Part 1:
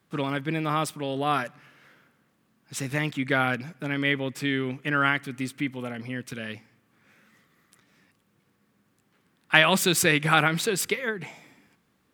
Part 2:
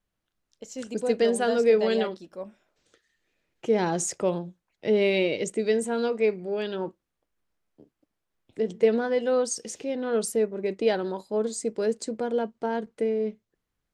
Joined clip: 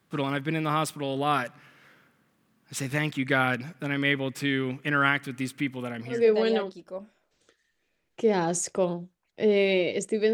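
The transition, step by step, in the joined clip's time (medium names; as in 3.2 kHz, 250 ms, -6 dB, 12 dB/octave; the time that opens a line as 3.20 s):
part 1
6.17 s: go over to part 2 from 1.62 s, crossfade 0.24 s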